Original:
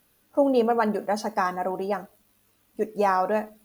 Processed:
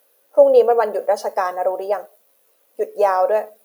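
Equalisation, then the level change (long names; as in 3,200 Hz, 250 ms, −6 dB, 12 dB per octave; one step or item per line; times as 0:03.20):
high-pass with resonance 520 Hz, resonance Q 4.3
high-shelf EQ 9,900 Hz +8.5 dB
0.0 dB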